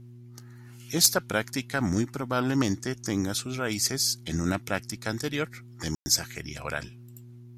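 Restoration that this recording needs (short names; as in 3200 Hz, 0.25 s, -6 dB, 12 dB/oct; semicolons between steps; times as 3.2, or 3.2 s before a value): clip repair -9.5 dBFS; de-hum 120.5 Hz, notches 3; room tone fill 5.95–6.06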